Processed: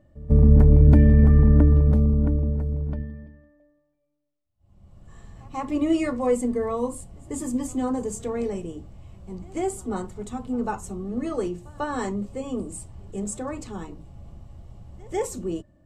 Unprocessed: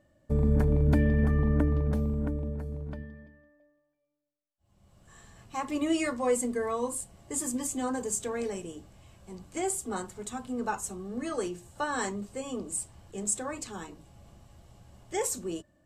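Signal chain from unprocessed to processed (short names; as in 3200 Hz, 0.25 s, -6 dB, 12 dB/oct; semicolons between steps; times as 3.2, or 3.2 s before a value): tilt -2.5 dB/oct; notch 1600 Hz, Q 11; reverse echo 0.145 s -23.5 dB; gain +2 dB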